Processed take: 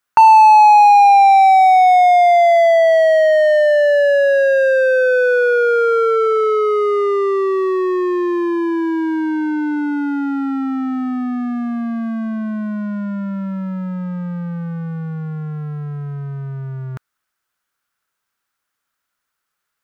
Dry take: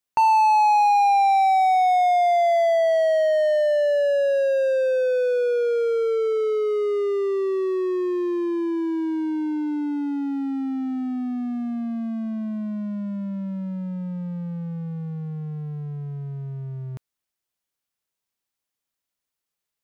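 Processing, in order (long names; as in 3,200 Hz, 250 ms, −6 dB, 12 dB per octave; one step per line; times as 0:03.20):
parametric band 1,400 Hz +14.5 dB 0.83 octaves
level +5.5 dB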